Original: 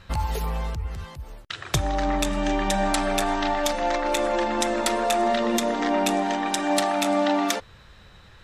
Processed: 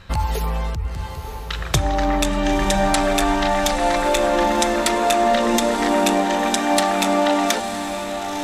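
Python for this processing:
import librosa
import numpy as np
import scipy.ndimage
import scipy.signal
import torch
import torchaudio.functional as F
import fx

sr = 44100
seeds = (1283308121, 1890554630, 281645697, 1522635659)

y = fx.echo_diffused(x, sr, ms=966, feedback_pct=51, wet_db=-8)
y = y * librosa.db_to_amplitude(4.5)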